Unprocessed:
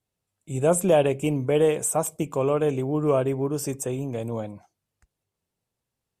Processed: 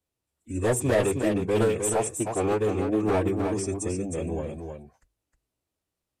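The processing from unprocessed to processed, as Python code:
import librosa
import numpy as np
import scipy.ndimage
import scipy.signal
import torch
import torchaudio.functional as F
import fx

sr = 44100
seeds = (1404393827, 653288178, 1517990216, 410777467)

y = np.clip(x, -10.0 ** (-17.0 / 20.0), 10.0 ** (-17.0 / 20.0))
y = fx.pitch_keep_formants(y, sr, semitones=-6.0)
y = fx.hum_notches(y, sr, base_hz=50, count=2)
y = y + 10.0 ** (-6.0 / 20.0) * np.pad(y, (int(312 * sr / 1000.0), 0))[:len(y)]
y = F.gain(torch.from_numpy(y), -1.0).numpy()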